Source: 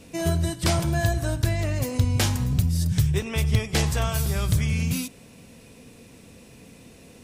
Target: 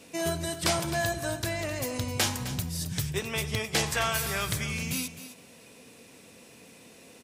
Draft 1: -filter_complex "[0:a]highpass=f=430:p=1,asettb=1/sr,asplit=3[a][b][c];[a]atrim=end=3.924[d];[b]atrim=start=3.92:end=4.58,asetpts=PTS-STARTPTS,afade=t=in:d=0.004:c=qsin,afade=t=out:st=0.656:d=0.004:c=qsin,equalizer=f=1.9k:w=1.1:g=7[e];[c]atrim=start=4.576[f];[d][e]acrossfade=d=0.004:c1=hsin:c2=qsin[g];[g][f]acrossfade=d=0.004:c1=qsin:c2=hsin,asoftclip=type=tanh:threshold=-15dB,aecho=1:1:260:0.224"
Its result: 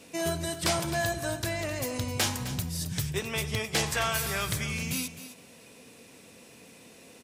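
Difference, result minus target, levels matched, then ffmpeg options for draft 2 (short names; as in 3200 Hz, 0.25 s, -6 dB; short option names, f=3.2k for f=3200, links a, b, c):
soft clip: distortion +14 dB
-filter_complex "[0:a]highpass=f=430:p=1,asettb=1/sr,asplit=3[a][b][c];[a]atrim=end=3.924[d];[b]atrim=start=3.92:end=4.58,asetpts=PTS-STARTPTS,afade=t=in:d=0.004:c=qsin,afade=t=out:st=0.656:d=0.004:c=qsin,equalizer=f=1.9k:w=1.1:g=7[e];[c]atrim=start=4.576[f];[d][e]acrossfade=d=0.004:c1=hsin:c2=qsin[g];[g][f]acrossfade=d=0.004:c1=qsin:c2=hsin,asoftclip=type=tanh:threshold=-7dB,aecho=1:1:260:0.224"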